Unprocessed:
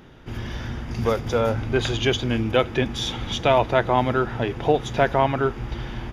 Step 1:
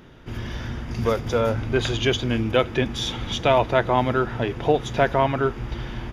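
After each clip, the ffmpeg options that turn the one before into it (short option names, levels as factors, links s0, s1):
-af "bandreject=f=800:w=17"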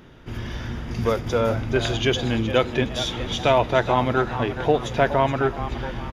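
-filter_complex "[0:a]asplit=5[s0][s1][s2][s3][s4];[s1]adelay=420,afreqshift=120,volume=0.251[s5];[s2]adelay=840,afreqshift=240,volume=0.1[s6];[s3]adelay=1260,afreqshift=360,volume=0.0403[s7];[s4]adelay=1680,afreqshift=480,volume=0.016[s8];[s0][s5][s6][s7][s8]amix=inputs=5:normalize=0"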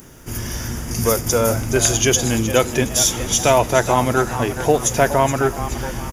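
-af "aexciter=amount=10.7:drive=7.4:freq=5700,volume=1.5"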